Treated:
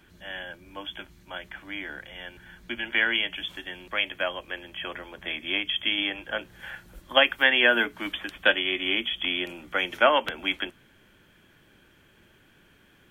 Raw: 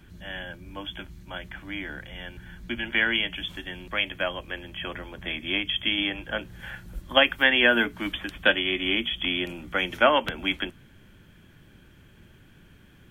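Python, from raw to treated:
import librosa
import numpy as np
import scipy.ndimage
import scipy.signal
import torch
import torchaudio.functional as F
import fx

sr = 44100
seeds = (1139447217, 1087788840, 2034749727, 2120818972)

y = fx.bass_treble(x, sr, bass_db=-11, treble_db=-1)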